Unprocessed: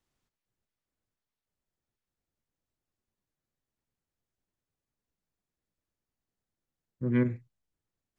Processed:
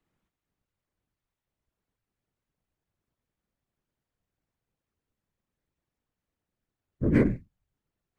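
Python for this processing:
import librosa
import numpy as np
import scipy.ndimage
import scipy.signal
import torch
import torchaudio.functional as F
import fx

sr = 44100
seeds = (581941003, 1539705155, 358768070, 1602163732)

y = scipy.ndimage.median_filter(x, 9, mode='constant')
y = fx.whisperise(y, sr, seeds[0])
y = y * librosa.db_to_amplitude(4.0)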